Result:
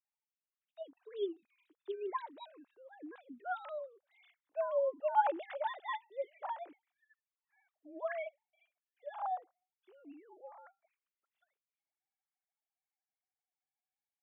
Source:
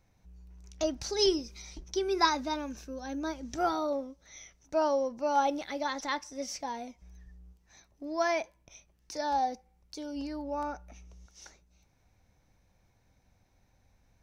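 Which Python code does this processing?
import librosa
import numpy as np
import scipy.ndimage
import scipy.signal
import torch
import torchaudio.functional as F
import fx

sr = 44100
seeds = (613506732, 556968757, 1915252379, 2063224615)

y = fx.sine_speech(x, sr)
y = fx.doppler_pass(y, sr, speed_mps=13, closest_m=12.0, pass_at_s=5.98)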